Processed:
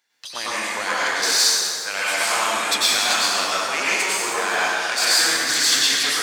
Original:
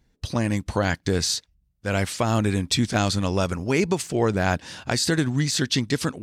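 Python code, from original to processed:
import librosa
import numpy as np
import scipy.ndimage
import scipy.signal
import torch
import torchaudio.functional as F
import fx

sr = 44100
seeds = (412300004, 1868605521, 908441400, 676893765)

y = fx.diode_clip(x, sr, knee_db=-22.0)
y = scipy.signal.sosfilt(scipy.signal.butter(2, 1200.0, 'highpass', fs=sr, output='sos'), y)
y = fx.rev_plate(y, sr, seeds[0], rt60_s=2.6, hf_ratio=0.65, predelay_ms=85, drr_db=-9.0)
y = F.gain(torch.from_numpy(y), 3.5).numpy()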